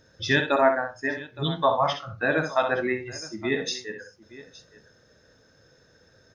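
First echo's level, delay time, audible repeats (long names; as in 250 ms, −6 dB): −7.5 dB, 63 ms, 2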